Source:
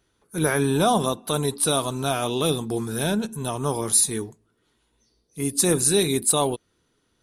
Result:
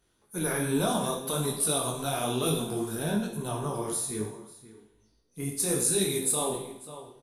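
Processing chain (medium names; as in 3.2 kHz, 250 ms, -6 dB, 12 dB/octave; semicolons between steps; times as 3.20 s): peaking EQ 12 kHz +6.5 dB 0.84 oct; echo from a far wall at 92 m, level -18 dB; compression 2:1, threshold -25 dBFS, peak gain reduction 8.5 dB; 2.95–5.60 s: treble shelf 3.5 kHz -7.5 dB; Schroeder reverb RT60 0.72 s, combs from 33 ms, DRR 4 dB; detune thickener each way 41 cents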